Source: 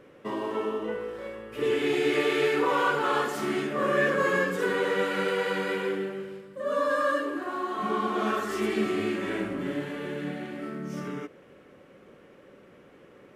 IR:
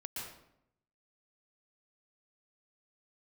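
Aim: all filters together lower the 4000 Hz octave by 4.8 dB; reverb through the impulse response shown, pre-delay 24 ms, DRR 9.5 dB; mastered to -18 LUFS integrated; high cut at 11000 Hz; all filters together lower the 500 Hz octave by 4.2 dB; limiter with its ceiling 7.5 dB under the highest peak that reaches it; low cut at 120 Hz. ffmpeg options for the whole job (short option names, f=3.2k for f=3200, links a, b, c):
-filter_complex "[0:a]highpass=120,lowpass=11k,equalizer=f=500:t=o:g=-5,equalizer=f=4k:t=o:g=-7,alimiter=limit=-23dB:level=0:latency=1,asplit=2[a][b];[1:a]atrim=start_sample=2205,adelay=24[c];[b][c]afir=irnorm=-1:irlink=0,volume=-9dB[d];[a][d]amix=inputs=2:normalize=0,volume=14.5dB"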